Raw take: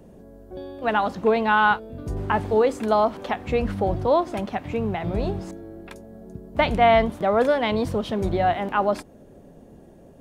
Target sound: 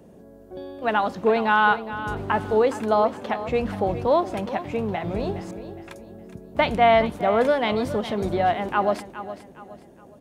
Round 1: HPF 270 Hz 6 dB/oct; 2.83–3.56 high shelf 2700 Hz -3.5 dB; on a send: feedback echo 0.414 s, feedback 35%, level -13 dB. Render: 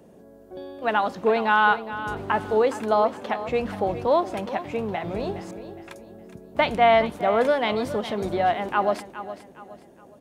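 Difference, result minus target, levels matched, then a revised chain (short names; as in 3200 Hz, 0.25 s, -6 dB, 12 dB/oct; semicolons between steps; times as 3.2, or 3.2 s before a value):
125 Hz band -3.5 dB
HPF 120 Hz 6 dB/oct; 2.83–3.56 high shelf 2700 Hz -3.5 dB; on a send: feedback echo 0.414 s, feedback 35%, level -13 dB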